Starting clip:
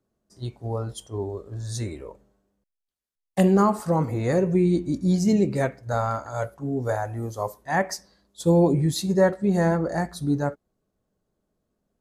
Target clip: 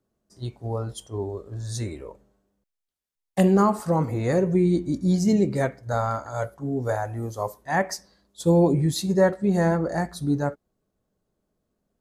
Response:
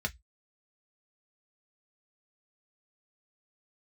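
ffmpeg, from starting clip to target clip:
-filter_complex "[0:a]asettb=1/sr,asplit=3[s0][s1][s2];[s0]atrim=end=4.404[s3];[s1]atrim=start=4.4:end=6.77,asetpts=PTS-STARTPTS,afade=t=in:d=0.004:c=qsin,afade=t=out:st=2.366:d=0.004:c=qsin,bandreject=f=2600:w=9[s4];[s2]atrim=start=6.766[s5];[s3][s4]acrossfade=d=0.004:c1=hsin:c2=qsin[s6];[s6][s5]acrossfade=d=0.004:c1=qsin:c2=hsin"

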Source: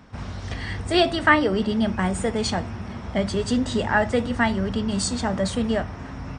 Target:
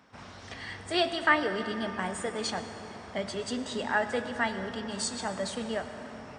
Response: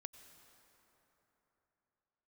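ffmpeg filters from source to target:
-filter_complex "[0:a]highpass=f=450:p=1[s0];[1:a]atrim=start_sample=2205[s1];[s0][s1]afir=irnorm=-1:irlink=0"

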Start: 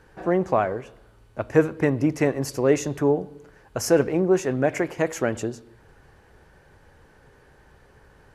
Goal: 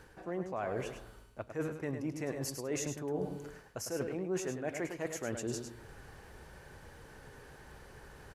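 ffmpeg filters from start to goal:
-af "highshelf=f=3900:g=6.5,areverse,acompressor=threshold=0.02:ratio=12,areverse,aecho=1:1:104:0.422"

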